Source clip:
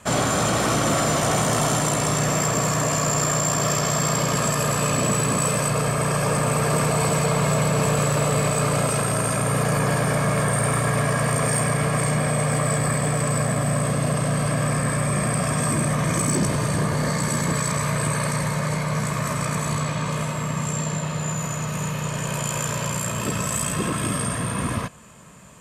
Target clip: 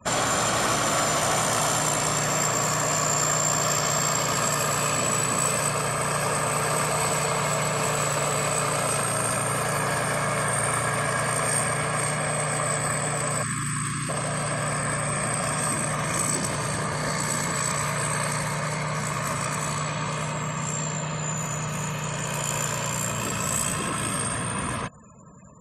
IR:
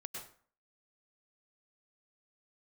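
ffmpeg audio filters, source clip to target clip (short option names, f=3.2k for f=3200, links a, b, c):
-filter_complex "[0:a]asettb=1/sr,asplit=3[a][b][c];[a]atrim=end=13.434[d];[b]atrim=start=13.43:end=14.09,asetpts=PTS-STARTPTS,afade=t=in:d=0.004:c=qsin,afade=t=out:st=0.656:d=0.004:c=qsin,asuperstop=centerf=640:order=20:qfactor=0.98[e];[c]atrim=start=14.086[f];[d][e]acrossfade=d=0.004:c1=hsin:c2=qsin[g];[g][f]acrossfade=d=0.004:c1=qsin:c2=hsin,acrossover=split=640|2000[h][i][j];[h]alimiter=level_in=2dB:limit=-24dB:level=0:latency=1,volume=-2dB[k];[k][i][j]amix=inputs=3:normalize=0,afftfilt=real='re*gte(hypot(re,im),0.00708)':imag='im*gte(hypot(re,im),0.00708)':win_size=1024:overlap=0.75"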